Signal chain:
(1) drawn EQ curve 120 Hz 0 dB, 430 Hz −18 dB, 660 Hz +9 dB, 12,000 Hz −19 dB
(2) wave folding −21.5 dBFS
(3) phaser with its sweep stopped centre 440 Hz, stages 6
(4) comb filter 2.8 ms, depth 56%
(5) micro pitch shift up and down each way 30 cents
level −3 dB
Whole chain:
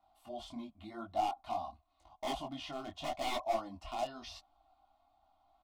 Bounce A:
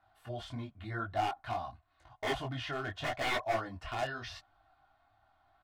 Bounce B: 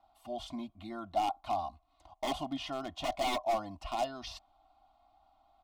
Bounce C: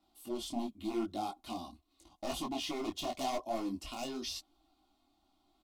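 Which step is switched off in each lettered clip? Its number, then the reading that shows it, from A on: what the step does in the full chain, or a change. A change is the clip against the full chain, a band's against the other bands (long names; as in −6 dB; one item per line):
3, 125 Hz band +12.5 dB
5, change in crest factor −2.0 dB
1, 250 Hz band +7.5 dB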